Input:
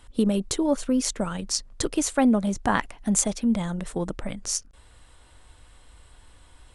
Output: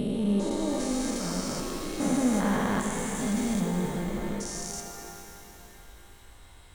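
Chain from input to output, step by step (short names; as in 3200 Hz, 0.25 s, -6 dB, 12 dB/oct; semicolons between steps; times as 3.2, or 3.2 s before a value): stepped spectrum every 0.4 s; small resonant body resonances 2100/3800 Hz, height 10 dB; shimmer reverb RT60 3.2 s, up +12 st, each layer -8 dB, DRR 3.5 dB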